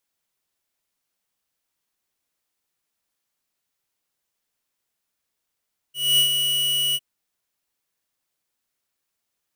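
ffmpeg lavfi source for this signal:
ffmpeg -f lavfi -i "aevalsrc='0.158*(2*lt(mod(2930*t,1),0.5)-1)':duration=1.053:sample_rate=44100,afade=type=in:duration=0.242,afade=type=out:start_time=0.242:duration=0.101:silence=0.501,afade=type=out:start_time=1.01:duration=0.043" out.wav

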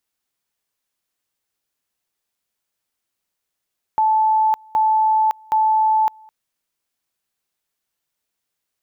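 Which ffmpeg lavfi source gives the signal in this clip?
ffmpeg -f lavfi -i "aevalsrc='pow(10,(-13-29*gte(mod(t,0.77),0.56))/20)*sin(2*PI*872*t)':duration=2.31:sample_rate=44100" out.wav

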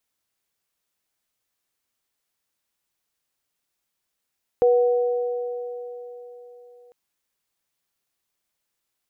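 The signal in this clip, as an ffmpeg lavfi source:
ffmpeg -f lavfi -i "aevalsrc='0.224*pow(10,-3*t/3.86)*sin(2*PI*486*t)+0.0531*pow(10,-3*t/3.73)*sin(2*PI*743*t)':duration=2.3:sample_rate=44100" out.wav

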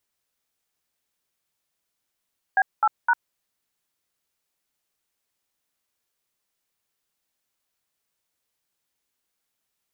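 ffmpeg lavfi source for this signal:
ffmpeg -f lavfi -i "aevalsrc='0.126*clip(min(mod(t,0.257),0.05-mod(t,0.257))/0.002,0,1)*(eq(floor(t/0.257),0)*(sin(2*PI*770*mod(t,0.257))+sin(2*PI*1633*mod(t,0.257)))+eq(floor(t/0.257),1)*(sin(2*PI*852*mod(t,0.257))+sin(2*PI*1336*mod(t,0.257)))+eq(floor(t/0.257),2)*(sin(2*PI*941*mod(t,0.257))+sin(2*PI*1477*mod(t,0.257))))':duration=0.771:sample_rate=44100" out.wav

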